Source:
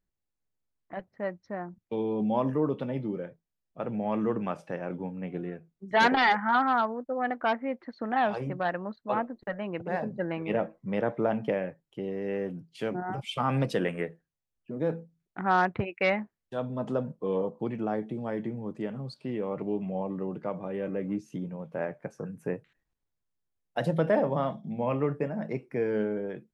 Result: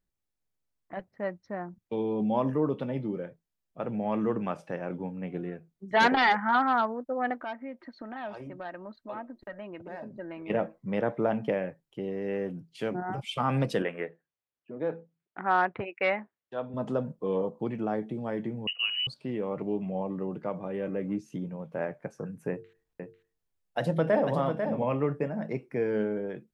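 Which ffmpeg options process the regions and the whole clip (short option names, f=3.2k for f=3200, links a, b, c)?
-filter_complex "[0:a]asettb=1/sr,asplit=3[a][b][c];[a]atrim=end=7.424[d];[b]atrim=start=7.42:end=10.5,asetpts=PTS-STARTPTS,afade=t=in:d=0.004:c=qsin,afade=t=out:st=3.076:d=0.004:c=qsin,acompressor=threshold=-44dB:ratio=2:attack=3.2:release=140:knee=1:detection=peak,aecho=1:1:3.2:0.43,atrim=end_sample=135828[e];[c]atrim=start=10.496[f];[d][e]acrossfade=d=0.004:c1=hsin:c2=qsin[g];[g][f]acrossfade=d=0.004:c1=qsin:c2=hsin,asettb=1/sr,asplit=3[h][i][j];[h]atrim=end=13.824[k];[i]atrim=start=13.82:end=16.74,asetpts=PTS-STARTPTS,afade=t=in:d=0.004:c=qsin,afade=t=out:st=2.916:d=0.004:c=qsin,highpass=140,lowpass=3.2k,equalizer=f=180:t=o:w=1.5:g=-7.5[l];[j]atrim=start=16.736[m];[k][l]acrossfade=d=0.004:c1=hsin:c2=qsin[n];[n][m]acrossfade=d=0.004:c1=qsin:c2=hsin,asettb=1/sr,asplit=3[o][p][q];[o]atrim=end=18.674[r];[p]atrim=start=18.67:end=19.07,asetpts=PTS-STARTPTS,afade=t=in:d=0.004:c=qsin,afade=t=out:st=0.396:d=0.004:c=qsin,equalizer=f=110:t=o:w=2.6:g=7.5,lowpass=f=2.6k:t=q:w=0.5098,lowpass=f=2.6k:t=q:w=0.6013,lowpass=f=2.6k:t=q:w=0.9,lowpass=f=2.6k:t=q:w=2.563,afreqshift=-3100[s];[q]atrim=start=19.066[t];[r][s]acrossfade=d=0.004:c1=hsin:c2=qsin[u];[u][t]acrossfade=d=0.004:c1=qsin:c2=hsin,asettb=1/sr,asplit=3[v][w][x];[v]atrim=end=22.504[y];[w]atrim=start=22.5:end=24.84,asetpts=PTS-STARTPTS,afade=t=in:d=0.004:c=qsin,afade=t=out:st=2.336:d=0.004:c=qsin,bandreject=f=50:t=h:w=6,bandreject=f=100:t=h:w=6,bandreject=f=150:t=h:w=6,bandreject=f=200:t=h:w=6,bandreject=f=250:t=h:w=6,bandreject=f=300:t=h:w=6,bandreject=f=350:t=h:w=6,bandreject=f=400:t=h:w=6,bandreject=f=450:t=h:w=6,aecho=1:1:495:0.473,atrim=end_sample=103194[z];[x]atrim=start=24.836[aa];[y][z]acrossfade=d=0.004:c1=hsin:c2=qsin[ab];[ab][aa]acrossfade=d=0.004:c1=qsin:c2=hsin"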